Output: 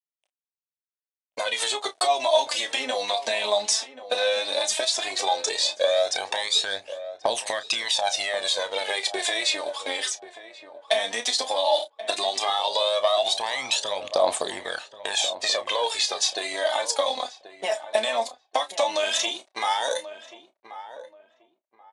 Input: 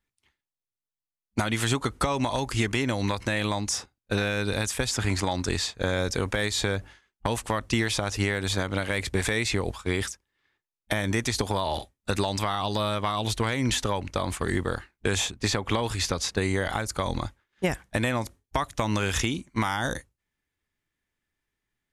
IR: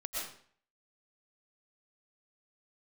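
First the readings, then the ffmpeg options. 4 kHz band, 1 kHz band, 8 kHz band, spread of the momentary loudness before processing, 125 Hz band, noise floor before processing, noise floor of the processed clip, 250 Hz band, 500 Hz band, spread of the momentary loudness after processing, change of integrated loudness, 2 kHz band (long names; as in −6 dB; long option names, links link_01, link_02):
+7.5 dB, +4.0 dB, +4.0 dB, 5 LU, below −30 dB, below −85 dBFS, below −85 dBFS, −15.5 dB, +5.0 dB, 10 LU, +3.0 dB, 0.0 dB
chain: -filter_complex "[0:a]equalizer=frequency=3700:width=1.8:gain=8.5,bandreject=frequency=1400:width=8.8,acompressor=threshold=-28dB:ratio=6,aphaser=in_gain=1:out_gain=1:delay=4.8:decay=0.72:speed=0.14:type=triangular,aeval=exprs='sgn(val(0))*max(abs(val(0))-0.00282,0)':channel_layout=same,highpass=frequency=640:width_type=q:width=4.9,asplit=2[link_01][link_02];[link_02]adelay=31,volume=-11.5dB[link_03];[link_01][link_03]amix=inputs=2:normalize=0,asplit=2[link_04][link_05];[link_05]adelay=1083,lowpass=frequency=1400:poles=1,volume=-12.5dB,asplit=2[link_06][link_07];[link_07]adelay=1083,lowpass=frequency=1400:poles=1,volume=0.25,asplit=2[link_08][link_09];[link_09]adelay=1083,lowpass=frequency=1400:poles=1,volume=0.25[link_10];[link_06][link_08][link_10]amix=inputs=3:normalize=0[link_11];[link_04][link_11]amix=inputs=2:normalize=0,aresample=22050,aresample=44100,adynamicequalizer=threshold=0.00891:dfrequency=2800:dqfactor=0.7:tfrequency=2800:tqfactor=0.7:attack=5:release=100:ratio=0.375:range=2.5:mode=boostabove:tftype=highshelf,volume=1dB"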